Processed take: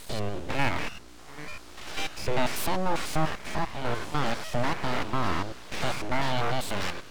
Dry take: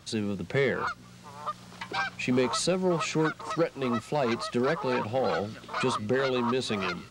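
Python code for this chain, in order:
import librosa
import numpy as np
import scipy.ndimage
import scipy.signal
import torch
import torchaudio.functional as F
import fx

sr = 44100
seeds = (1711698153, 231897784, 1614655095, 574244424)

y = fx.spec_steps(x, sr, hold_ms=100)
y = np.abs(y)
y = F.gain(torch.from_numpy(y), 4.0).numpy()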